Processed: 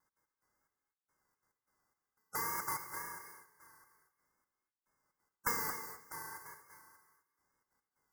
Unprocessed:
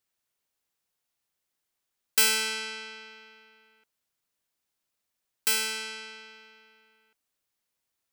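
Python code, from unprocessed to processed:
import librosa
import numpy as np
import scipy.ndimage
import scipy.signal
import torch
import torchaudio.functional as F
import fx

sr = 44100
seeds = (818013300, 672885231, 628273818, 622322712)

p1 = np.r_[np.sort(x[:len(x) // 64 * 64].reshape(-1, 64), axis=1).ravel(), x[len(x) // 64 * 64:]]
p2 = fx.step_gate(p1, sr, bpm=179, pattern='x.x..xxx.....xx', floor_db=-60.0, edge_ms=4.5)
p3 = scipy.signal.sosfilt(scipy.signal.ellip(3, 1.0, 40, [1600.0, 5600.0], 'bandstop', fs=sr, output='sos'), p2)
p4 = fx.spec_gate(p3, sr, threshold_db=-20, keep='weak')
p5 = fx.band_shelf(p4, sr, hz=1400.0, db=9.5, octaves=1.7)
p6 = fx.over_compress(p5, sr, threshold_db=-47.0, ratio=-0.5)
p7 = p5 + (p6 * 10.0 ** (-0.5 / 20.0))
p8 = fx.echo_feedback(p7, sr, ms=239, feedback_pct=25, wet_db=-17)
p9 = fx.wow_flutter(p8, sr, seeds[0], rate_hz=2.1, depth_cents=66.0)
p10 = fx.rev_gated(p9, sr, seeds[1], gate_ms=280, shape='rising', drr_db=8.5)
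y = p10 * 10.0 ** (1.0 / 20.0)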